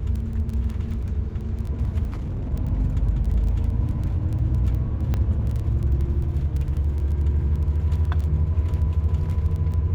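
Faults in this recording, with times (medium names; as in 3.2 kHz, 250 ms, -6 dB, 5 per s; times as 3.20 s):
crackle 10 per s -28 dBFS
2.09–2.54 s: clipped -25 dBFS
5.14 s: pop -13 dBFS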